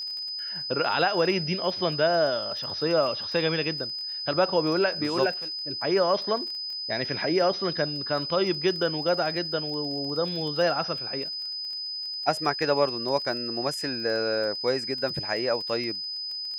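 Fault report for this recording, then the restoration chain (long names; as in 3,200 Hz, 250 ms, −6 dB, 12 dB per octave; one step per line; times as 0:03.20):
surface crackle 24 per second −34 dBFS
whistle 5,000 Hz −31 dBFS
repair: click removal
notch filter 5,000 Hz, Q 30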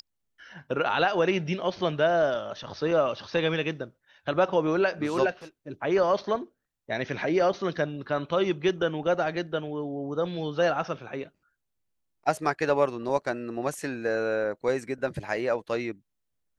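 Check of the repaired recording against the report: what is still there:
none of them is left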